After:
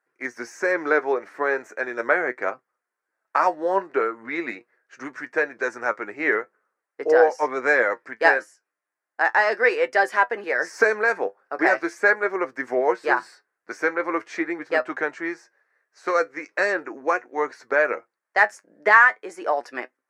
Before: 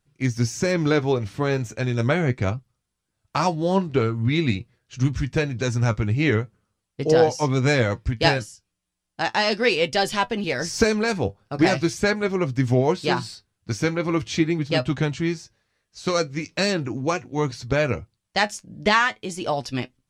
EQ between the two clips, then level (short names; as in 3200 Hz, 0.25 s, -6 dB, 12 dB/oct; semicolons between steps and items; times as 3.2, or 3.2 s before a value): HPF 390 Hz 24 dB/oct; resonant high shelf 2400 Hz -11 dB, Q 3; +1.0 dB